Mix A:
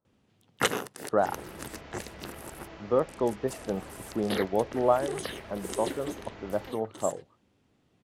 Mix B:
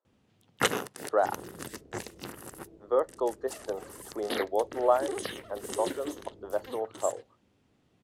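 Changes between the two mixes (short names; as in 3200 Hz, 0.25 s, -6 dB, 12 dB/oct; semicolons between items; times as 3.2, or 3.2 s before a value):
speech: add HPF 370 Hz 24 dB/oct; second sound: add ladder low-pass 480 Hz, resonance 45%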